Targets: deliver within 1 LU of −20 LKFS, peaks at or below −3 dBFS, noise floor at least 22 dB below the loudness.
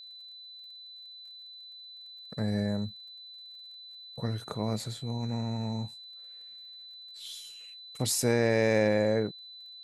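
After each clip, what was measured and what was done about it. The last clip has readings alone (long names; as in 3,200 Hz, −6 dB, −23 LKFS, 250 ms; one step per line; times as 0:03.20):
crackle rate 33 per second; interfering tone 4,000 Hz; level of the tone −45 dBFS; integrated loudness −30.5 LKFS; sample peak −12.5 dBFS; target loudness −20.0 LKFS
→ click removal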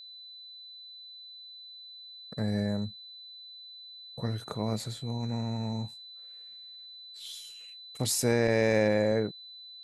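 crackle rate 0.10 per second; interfering tone 4,000 Hz; level of the tone −45 dBFS
→ notch filter 4,000 Hz, Q 30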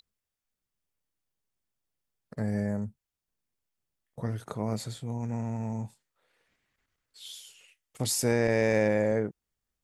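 interfering tone none found; integrated loudness −30.0 LKFS; sample peak −12.0 dBFS; target loudness −20.0 LKFS
→ level +10 dB
brickwall limiter −3 dBFS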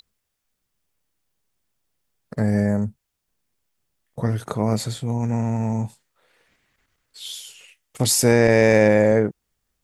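integrated loudness −20.0 LKFS; sample peak −3.0 dBFS; background noise floor −78 dBFS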